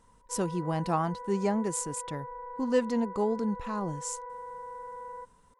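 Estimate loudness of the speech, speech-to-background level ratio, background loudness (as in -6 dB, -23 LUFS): -31.5 LUFS, 10.5 dB, -42.0 LUFS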